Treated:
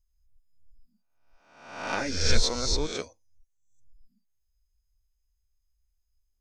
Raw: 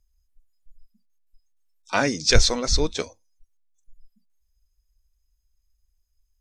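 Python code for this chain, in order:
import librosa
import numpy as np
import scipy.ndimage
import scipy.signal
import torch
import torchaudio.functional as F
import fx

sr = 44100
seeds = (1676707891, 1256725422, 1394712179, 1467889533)

y = fx.spec_swells(x, sr, rise_s=0.81)
y = fx.ensemble(y, sr, at=(1.94, 2.42), fade=0.02)
y = y * librosa.db_to_amplitude(-8.0)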